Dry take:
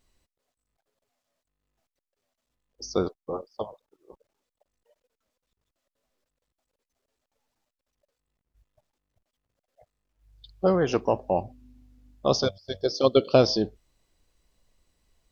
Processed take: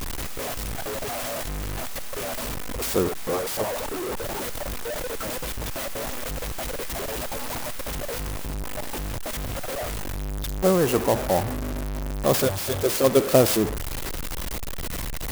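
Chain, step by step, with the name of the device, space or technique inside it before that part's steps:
early CD player with a faulty converter (converter with a step at zero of −23 dBFS; converter with an unsteady clock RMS 0.058 ms)

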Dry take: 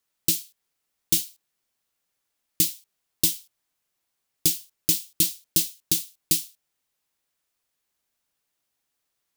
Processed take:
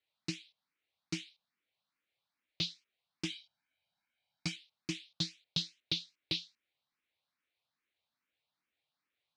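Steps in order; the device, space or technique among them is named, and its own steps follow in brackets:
0:03.30–0:04.56: comb filter 1.3 ms, depth 81%
barber-pole phaser into a guitar amplifier (frequency shifter mixed with the dry sound +2.4 Hz; soft clipping −11 dBFS, distortion −20 dB; loudspeaker in its box 93–4,200 Hz, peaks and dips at 400 Hz −5 dB, 2,300 Hz +5 dB, 3,900 Hz +5 dB)
level −2.5 dB

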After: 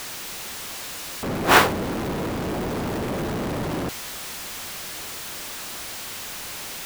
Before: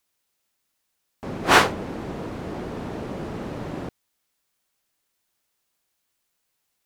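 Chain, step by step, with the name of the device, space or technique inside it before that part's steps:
early CD player with a faulty converter (converter with a step at zero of −26.5 dBFS; converter with an unsteady clock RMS 0.022 ms)

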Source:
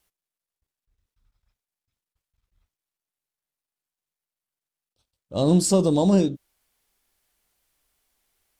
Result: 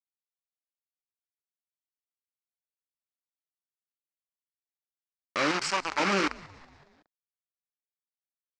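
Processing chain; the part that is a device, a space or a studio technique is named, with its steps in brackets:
0:05.51–0:06.00: octave-band graphic EQ 125/250/500/1,000 Hz −8/−8/−11/+8 dB
hand-held game console (bit reduction 4 bits; loudspeaker in its box 450–5,500 Hz, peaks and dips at 470 Hz −7 dB, 680 Hz −10 dB, 1,300 Hz +6 dB, 2,300 Hz +5 dB, 3,600 Hz −8 dB)
echo with shifted repeats 186 ms, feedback 55%, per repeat −150 Hz, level −22 dB

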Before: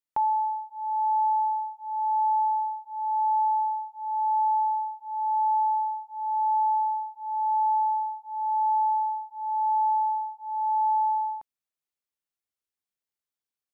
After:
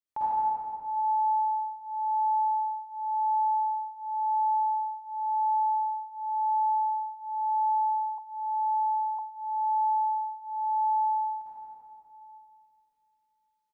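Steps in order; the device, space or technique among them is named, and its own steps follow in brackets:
cave (single-tap delay 171 ms −10 dB; convolution reverb RT60 2.7 s, pre-delay 45 ms, DRR −9.5 dB)
0:08.18–0:09.19: Butterworth high-pass 780 Hz
level −8 dB

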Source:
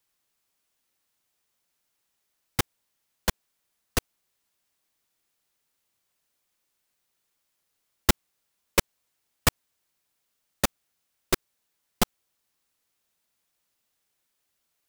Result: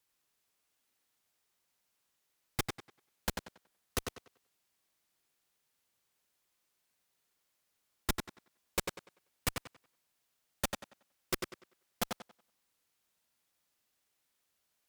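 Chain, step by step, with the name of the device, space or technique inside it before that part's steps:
rockabilly slapback (tube saturation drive 23 dB, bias 0.4; tape delay 95 ms, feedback 29%, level −3 dB, low-pass 5,500 Hz)
level −2 dB

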